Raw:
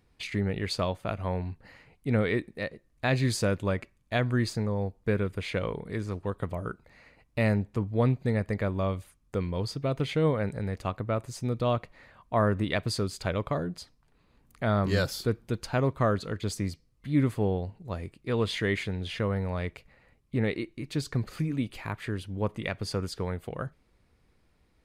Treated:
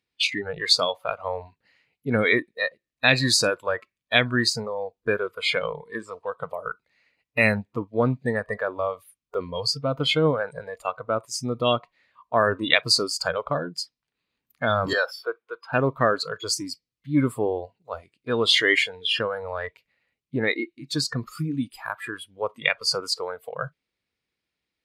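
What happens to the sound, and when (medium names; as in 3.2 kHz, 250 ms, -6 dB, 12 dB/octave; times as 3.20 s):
14.93–15.73 s: three-band isolator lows -23 dB, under 390 Hz, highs -16 dB, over 2.9 kHz
whole clip: frequency weighting D; spectral noise reduction 22 dB; trim +5.5 dB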